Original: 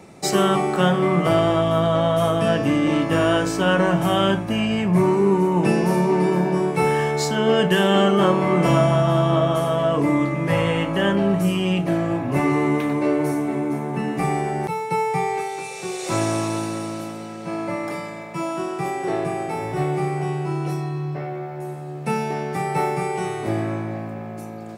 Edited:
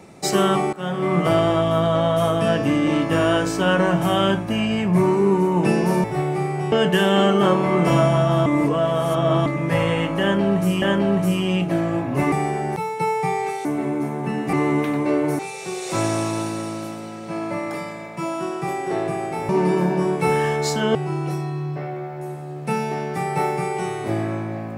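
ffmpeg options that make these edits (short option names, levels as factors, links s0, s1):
-filter_complex "[0:a]asplit=13[s0][s1][s2][s3][s4][s5][s6][s7][s8][s9][s10][s11][s12];[s0]atrim=end=0.73,asetpts=PTS-STARTPTS,afade=t=out:st=0.726:d=0.004:c=hsin:silence=0.0841395[s13];[s1]atrim=start=0.73:end=6.042,asetpts=PTS-STARTPTS,afade=t=in:d=0.44:silence=0.0841395[s14];[s2]atrim=start=19.658:end=20.342[s15];[s3]atrim=start=7.498:end=9.242[s16];[s4]atrim=start=9.238:end=10.242,asetpts=PTS-STARTPTS,areverse[s17];[s5]atrim=start=10.238:end=11.602[s18];[s6]atrim=start=10.988:end=12.492[s19];[s7]atrim=start=14.228:end=15.562[s20];[s8]atrim=start=13.348:end=14.232[s21];[s9]atrim=start=12.488:end=13.352[s22];[s10]atrim=start=15.558:end=19.662[s23];[s11]atrim=start=6.038:end=7.502[s24];[s12]atrim=start=20.338[s25];[s13][s14]concat=n=2:v=0:a=1[s26];[s26][s15]acrossfade=d=0.004:c1=hsin:c2=hsin[s27];[s27][s16]acrossfade=d=0.004:c1=hsin:c2=hsin[s28];[s28][s17]acrossfade=d=0.004:c1=hsin:c2=hsin[s29];[s29][s18]acrossfade=d=0.004:c1=hsin:c2=hsin[s30];[s30][s19]acrossfade=d=0.004:c1=hsin:c2=hsin[s31];[s31][s20]acrossfade=d=0.004:c1=hsin:c2=hsin[s32];[s32][s21]acrossfade=d=0.004:c1=hsin:c2=hsin[s33];[s33][s22]acrossfade=d=0.004:c1=hsin:c2=hsin[s34];[s34][s23]acrossfade=d=0.004:c1=hsin:c2=hsin[s35];[s35][s24]acrossfade=d=0.004:c1=hsin:c2=hsin[s36];[s36][s25]acrossfade=d=0.004:c1=hsin:c2=hsin"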